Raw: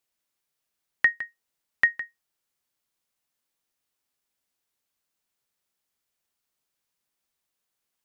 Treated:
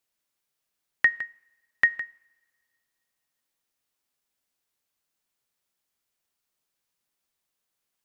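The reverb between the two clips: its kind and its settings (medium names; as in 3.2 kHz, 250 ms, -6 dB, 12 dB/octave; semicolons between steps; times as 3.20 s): two-slope reverb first 0.66 s, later 2.4 s, from -22 dB, DRR 20 dB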